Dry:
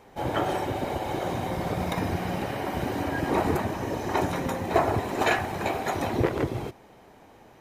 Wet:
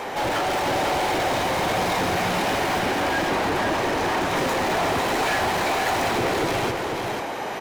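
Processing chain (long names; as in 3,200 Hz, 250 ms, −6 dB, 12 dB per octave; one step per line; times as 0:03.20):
brickwall limiter −18.5 dBFS, peak gain reduction 10 dB
mid-hump overdrive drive 34 dB, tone 5,200 Hz, clips at −18.5 dBFS
0:02.79–0:04.37: high-shelf EQ 5,600 Hz −5.5 dB
on a send: single-tap delay 492 ms −5 dB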